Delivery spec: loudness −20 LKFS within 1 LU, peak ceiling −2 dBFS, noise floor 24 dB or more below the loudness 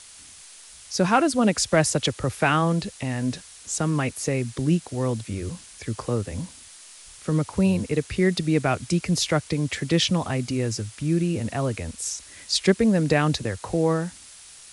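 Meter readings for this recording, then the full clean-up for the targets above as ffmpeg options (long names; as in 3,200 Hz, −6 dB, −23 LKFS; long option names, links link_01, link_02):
background noise floor −46 dBFS; target noise floor −48 dBFS; integrated loudness −24.0 LKFS; sample peak −6.5 dBFS; target loudness −20.0 LKFS
→ -af "afftdn=noise_reduction=6:noise_floor=-46"
-af "volume=4dB"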